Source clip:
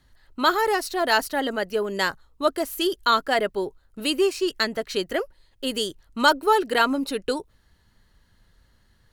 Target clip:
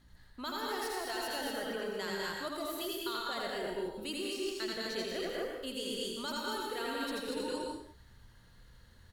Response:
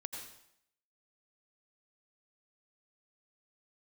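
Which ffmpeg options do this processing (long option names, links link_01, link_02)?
-filter_complex "[0:a]acrossover=split=150|3000[link_01][link_02][link_03];[link_02]acompressor=threshold=-24dB:ratio=6[link_04];[link_01][link_04][link_03]amix=inputs=3:normalize=0,aeval=exprs='val(0)+0.001*(sin(2*PI*60*n/s)+sin(2*PI*2*60*n/s)/2+sin(2*PI*3*60*n/s)/3+sin(2*PI*4*60*n/s)/4+sin(2*PI*5*60*n/s)/5)':channel_layout=same,aecho=1:1:81.63|201.2|236.2:0.631|0.562|0.631,areverse,acompressor=threshold=-33dB:ratio=6,areverse[link_05];[1:a]atrim=start_sample=2205,afade=type=out:start_time=0.36:duration=0.01,atrim=end_sample=16317[link_06];[link_05][link_06]afir=irnorm=-1:irlink=0"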